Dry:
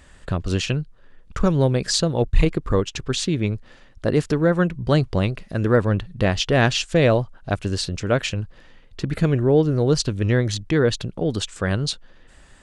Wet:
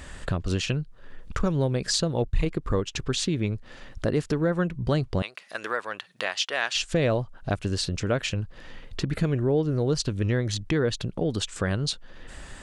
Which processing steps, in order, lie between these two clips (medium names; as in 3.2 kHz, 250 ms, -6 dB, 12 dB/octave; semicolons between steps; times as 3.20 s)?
5.22–6.76 s: high-pass 990 Hz 12 dB/octave; compression 2:1, threshold -41 dBFS, peak gain reduction 17 dB; trim +8 dB